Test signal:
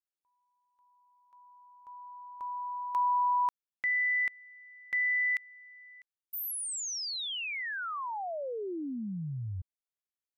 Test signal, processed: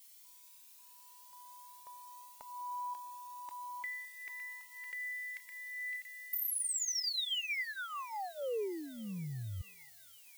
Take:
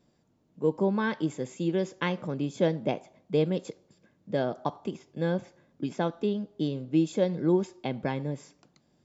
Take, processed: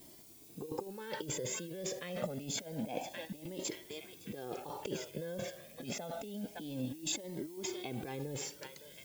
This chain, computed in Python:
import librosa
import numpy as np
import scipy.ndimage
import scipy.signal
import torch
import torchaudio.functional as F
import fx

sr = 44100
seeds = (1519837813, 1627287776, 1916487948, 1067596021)

p1 = x + fx.echo_banded(x, sr, ms=561, feedback_pct=65, hz=2500.0, wet_db=-20, dry=0)
p2 = fx.over_compress(p1, sr, threshold_db=-39.0, ratio=-1.0)
p3 = fx.bass_treble(p2, sr, bass_db=-9, treble_db=0)
p4 = fx.level_steps(p3, sr, step_db=16)
p5 = p3 + F.gain(torch.from_numpy(p4), -0.5).numpy()
p6 = fx.dmg_noise_colour(p5, sr, seeds[0], colour='blue', level_db=-57.0)
p7 = fx.peak_eq(p6, sr, hz=1200.0, db=-8.5, octaves=1.0)
p8 = fx.comb_cascade(p7, sr, direction='rising', hz=0.27)
y = F.gain(torch.from_numpy(p8), 3.5).numpy()